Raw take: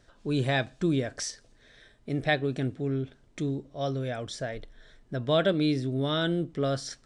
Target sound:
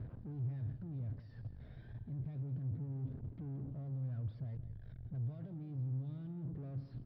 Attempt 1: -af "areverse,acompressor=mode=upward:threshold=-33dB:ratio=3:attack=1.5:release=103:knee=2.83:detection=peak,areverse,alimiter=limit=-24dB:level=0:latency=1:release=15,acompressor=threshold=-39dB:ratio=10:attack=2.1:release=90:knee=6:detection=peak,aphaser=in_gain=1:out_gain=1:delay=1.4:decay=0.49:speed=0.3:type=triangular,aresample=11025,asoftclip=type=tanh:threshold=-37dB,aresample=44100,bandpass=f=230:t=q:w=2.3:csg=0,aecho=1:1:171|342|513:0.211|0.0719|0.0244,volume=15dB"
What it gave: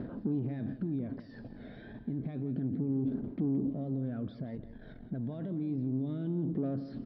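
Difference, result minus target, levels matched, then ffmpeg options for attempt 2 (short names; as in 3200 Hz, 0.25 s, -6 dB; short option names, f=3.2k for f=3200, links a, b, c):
250 Hz band +7.0 dB; soft clip: distortion -9 dB
-af "areverse,acompressor=mode=upward:threshold=-33dB:ratio=3:attack=1.5:release=103:knee=2.83:detection=peak,areverse,alimiter=limit=-24dB:level=0:latency=1:release=15,acompressor=threshold=-39dB:ratio=10:attack=2.1:release=90:knee=6:detection=peak,aphaser=in_gain=1:out_gain=1:delay=1.4:decay=0.49:speed=0.3:type=triangular,aresample=11025,asoftclip=type=tanh:threshold=-48.5dB,aresample=44100,bandpass=f=110:t=q:w=2.3:csg=0,aecho=1:1:171|342|513:0.211|0.0719|0.0244,volume=15dB"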